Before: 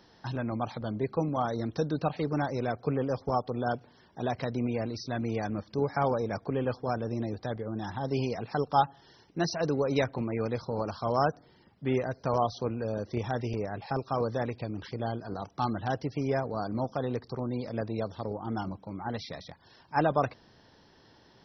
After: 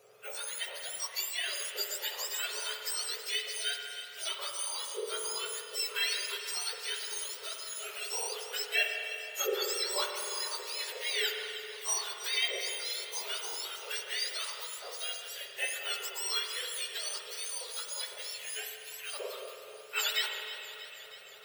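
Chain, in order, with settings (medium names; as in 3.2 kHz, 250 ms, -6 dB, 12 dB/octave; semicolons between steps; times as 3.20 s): spectrum inverted on a logarithmic axis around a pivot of 1.5 kHz; 10.50–11.30 s: high-pass 120 Hz 6 dB/octave; echo whose repeats swap between lows and highs 159 ms, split 1.9 kHz, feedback 85%, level -13 dB; spring tank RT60 2.7 s, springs 46 ms, chirp 75 ms, DRR 3 dB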